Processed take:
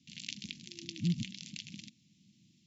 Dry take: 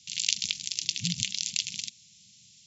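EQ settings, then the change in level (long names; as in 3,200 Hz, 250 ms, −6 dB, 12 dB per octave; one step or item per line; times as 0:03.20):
resonant band-pass 330 Hz, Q 3.3
+17.0 dB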